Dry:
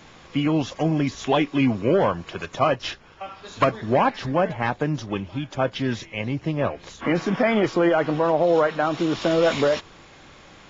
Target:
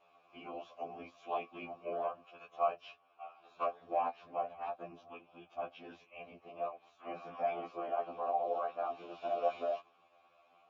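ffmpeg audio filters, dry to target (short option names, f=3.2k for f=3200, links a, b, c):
-filter_complex "[0:a]afftfilt=real='hypot(re,im)*cos(2*PI*random(0))':imag='hypot(re,im)*sin(2*PI*random(1))':win_size=512:overlap=0.75,acrossover=split=180[a][b];[a]acompressor=threshold=-35dB:ratio=2.5[c];[c][b]amix=inputs=2:normalize=0,asplit=3[d][e][f];[d]bandpass=f=730:t=q:w=8,volume=0dB[g];[e]bandpass=f=1.09k:t=q:w=8,volume=-6dB[h];[f]bandpass=f=2.44k:t=q:w=8,volume=-9dB[i];[g][h][i]amix=inputs=3:normalize=0,afftfilt=real='re*2*eq(mod(b,4),0)':imag='im*2*eq(mod(b,4),0)':win_size=2048:overlap=0.75,volume=1dB"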